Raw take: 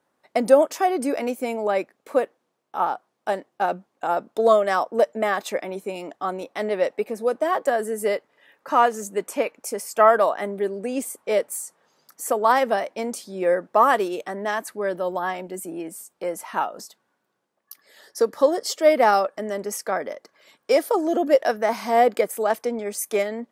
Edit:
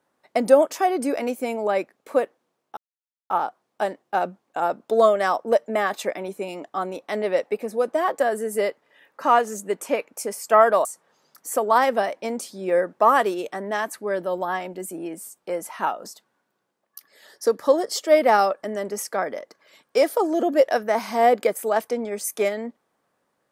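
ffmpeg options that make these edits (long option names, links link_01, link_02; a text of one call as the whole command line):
ffmpeg -i in.wav -filter_complex "[0:a]asplit=3[link_01][link_02][link_03];[link_01]atrim=end=2.77,asetpts=PTS-STARTPTS,afade=type=out:start_time=2.766:duration=0.004:curve=hsin,apad=pad_dur=0.53[link_04];[link_02]atrim=start=2.77:end=10.322,asetpts=PTS-STARTPTS,afade=type=in:duration=0.004:curve=hsin[link_05];[link_03]atrim=start=11.588[link_06];[link_04][link_05]concat=n=2:v=0:a=1[link_07];[link_07][link_06]acrossfade=duration=0.004:curve1=hsin:curve2=hsin" out.wav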